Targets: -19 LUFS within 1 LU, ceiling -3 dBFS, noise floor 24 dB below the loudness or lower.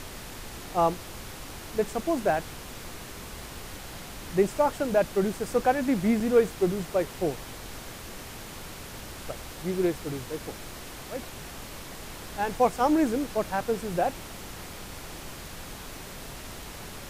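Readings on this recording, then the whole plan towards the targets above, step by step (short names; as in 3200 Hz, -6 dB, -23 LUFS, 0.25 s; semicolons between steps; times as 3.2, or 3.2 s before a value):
dropouts 1; longest dropout 4.1 ms; noise floor -42 dBFS; noise floor target -52 dBFS; loudness -27.5 LUFS; peak -10.5 dBFS; loudness target -19.0 LUFS
-> interpolate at 6.2, 4.1 ms; noise print and reduce 10 dB; gain +8.5 dB; limiter -3 dBFS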